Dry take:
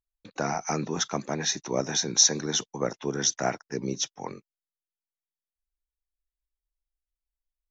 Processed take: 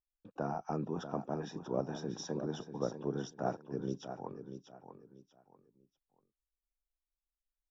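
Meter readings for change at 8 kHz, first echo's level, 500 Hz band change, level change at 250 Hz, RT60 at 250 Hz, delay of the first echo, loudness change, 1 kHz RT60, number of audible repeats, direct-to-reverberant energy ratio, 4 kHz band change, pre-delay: can't be measured, −9.5 dB, −6.5 dB, −6.0 dB, no reverb audible, 640 ms, −13.0 dB, no reverb audible, 3, no reverb audible, −24.0 dB, no reverb audible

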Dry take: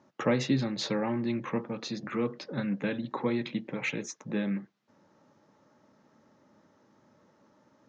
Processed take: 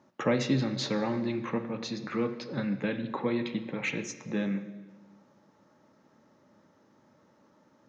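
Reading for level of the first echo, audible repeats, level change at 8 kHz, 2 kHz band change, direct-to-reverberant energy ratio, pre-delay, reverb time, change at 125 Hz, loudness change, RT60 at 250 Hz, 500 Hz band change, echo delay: no echo audible, no echo audible, can't be measured, +0.5 dB, 9.5 dB, 19 ms, 1.4 s, +0.5 dB, +0.5 dB, 1.6 s, +0.5 dB, no echo audible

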